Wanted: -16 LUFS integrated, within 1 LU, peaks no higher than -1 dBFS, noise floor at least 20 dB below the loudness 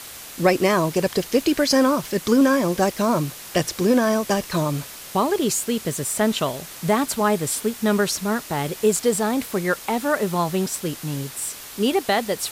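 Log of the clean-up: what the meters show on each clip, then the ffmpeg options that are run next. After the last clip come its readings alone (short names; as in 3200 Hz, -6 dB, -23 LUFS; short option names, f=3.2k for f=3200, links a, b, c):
noise floor -39 dBFS; noise floor target -42 dBFS; loudness -22.0 LUFS; peak -6.0 dBFS; loudness target -16.0 LUFS
-> -af "afftdn=nr=6:nf=-39"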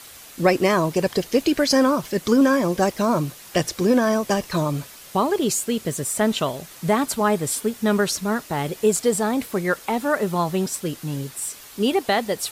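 noise floor -43 dBFS; loudness -22.0 LUFS; peak -6.0 dBFS; loudness target -16.0 LUFS
-> -af "volume=6dB,alimiter=limit=-1dB:level=0:latency=1"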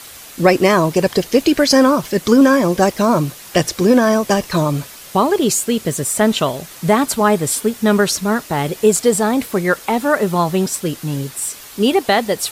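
loudness -16.0 LUFS; peak -1.0 dBFS; noise floor -37 dBFS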